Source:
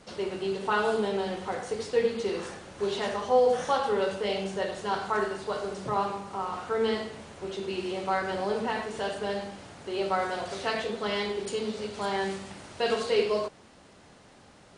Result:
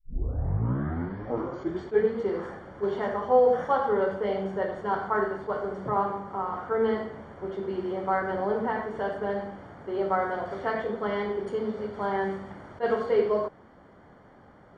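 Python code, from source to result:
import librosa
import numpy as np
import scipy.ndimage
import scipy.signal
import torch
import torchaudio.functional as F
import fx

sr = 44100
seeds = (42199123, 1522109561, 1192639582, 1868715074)

y = fx.tape_start_head(x, sr, length_s=2.18)
y = scipy.signal.savgol_filter(y, 41, 4, mode='constant')
y = fx.attack_slew(y, sr, db_per_s=420.0)
y = y * librosa.db_to_amplitude(2.0)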